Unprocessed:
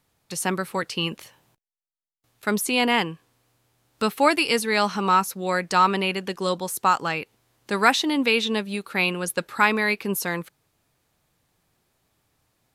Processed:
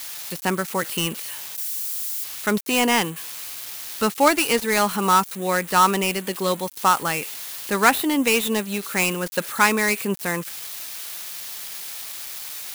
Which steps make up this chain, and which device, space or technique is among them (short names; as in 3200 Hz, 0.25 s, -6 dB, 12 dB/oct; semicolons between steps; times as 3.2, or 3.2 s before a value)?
budget class-D amplifier (switching dead time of 0.1 ms; switching spikes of -21 dBFS); gain +2 dB